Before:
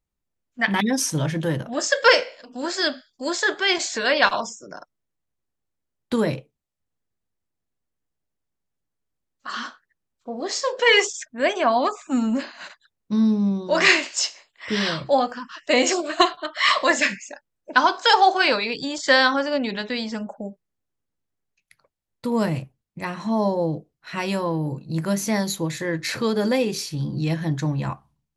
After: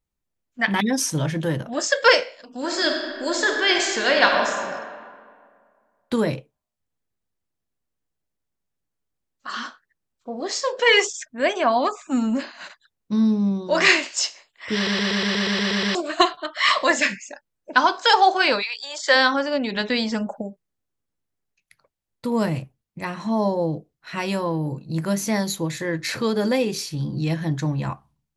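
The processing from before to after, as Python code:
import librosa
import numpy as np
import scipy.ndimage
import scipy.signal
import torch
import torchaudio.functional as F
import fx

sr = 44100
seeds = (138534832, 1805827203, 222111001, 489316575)

y = fx.reverb_throw(x, sr, start_s=2.6, length_s=1.97, rt60_s=2.0, drr_db=2.0)
y = fx.highpass(y, sr, hz=fx.line((18.61, 1200.0), (19.14, 350.0)), slope=24, at=(18.61, 19.14), fade=0.02)
y = fx.edit(y, sr, fx.stutter_over(start_s=14.75, slice_s=0.12, count=10),
    fx.clip_gain(start_s=19.76, length_s=0.66, db=4.5), tone=tone)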